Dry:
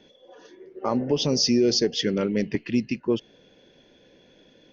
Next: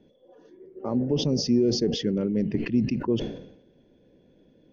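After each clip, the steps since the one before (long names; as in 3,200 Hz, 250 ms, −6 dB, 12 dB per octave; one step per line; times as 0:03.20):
tilt shelving filter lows +9.5 dB, about 720 Hz
level that may fall only so fast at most 75 dB per second
level −7.5 dB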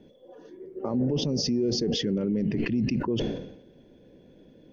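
brickwall limiter −24 dBFS, peak gain reduction 11 dB
level +5 dB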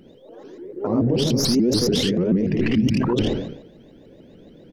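stylus tracing distortion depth 0.026 ms
ambience of single reflections 53 ms −4 dB, 79 ms −3.5 dB
pitch modulation by a square or saw wave saw up 6.9 Hz, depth 250 cents
level +4.5 dB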